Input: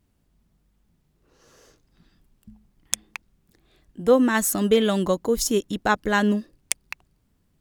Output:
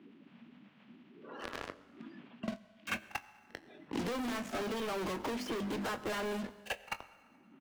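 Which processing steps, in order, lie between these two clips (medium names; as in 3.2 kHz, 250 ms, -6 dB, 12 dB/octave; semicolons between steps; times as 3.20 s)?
coarse spectral quantiser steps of 30 dB; Chebyshev band-pass 220–2900 Hz, order 3; hum notches 50/100/150/200/250/300/350 Hz; compression, threshold -27 dBFS, peak gain reduction 13.5 dB; waveshaping leveller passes 5; saturation -31.5 dBFS, distortion -8 dB; doubling 21 ms -12 dB; pre-echo 44 ms -20.5 dB; on a send at -14 dB: reverberation RT60 1.0 s, pre-delay 6 ms; on the sum: three bands compressed up and down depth 100%; trim -4 dB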